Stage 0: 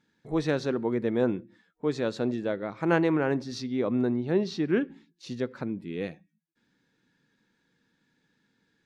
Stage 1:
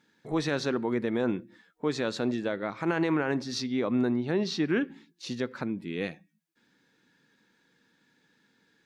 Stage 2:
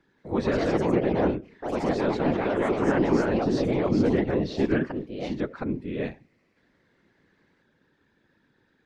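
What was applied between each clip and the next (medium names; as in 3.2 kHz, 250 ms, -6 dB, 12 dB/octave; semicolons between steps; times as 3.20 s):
bass shelf 150 Hz -11 dB; peak limiter -20.5 dBFS, peak gain reduction 10.5 dB; dynamic bell 480 Hz, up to -5 dB, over -44 dBFS, Q 0.92; trim +5.5 dB
whisper effect; ever faster or slower copies 178 ms, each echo +3 st, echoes 3; low-pass 1.4 kHz 6 dB/octave; trim +3 dB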